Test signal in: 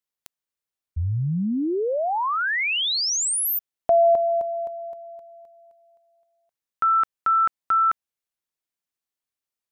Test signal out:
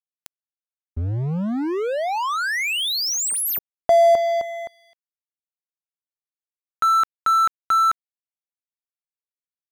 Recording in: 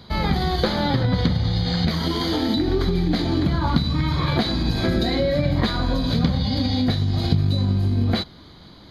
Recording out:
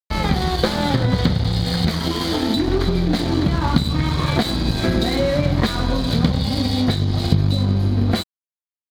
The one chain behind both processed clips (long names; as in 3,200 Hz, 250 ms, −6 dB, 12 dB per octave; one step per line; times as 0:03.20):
dead-zone distortion −31.5 dBFS
level +4 dB